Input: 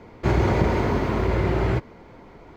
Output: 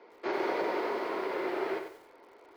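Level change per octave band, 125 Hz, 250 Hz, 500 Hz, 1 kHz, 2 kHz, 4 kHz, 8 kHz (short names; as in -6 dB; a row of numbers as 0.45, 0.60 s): under -35 dB, -12.5 dB, -7.0 dB, -6.5 dB, -6.5 dB, -7.0 dB, n/a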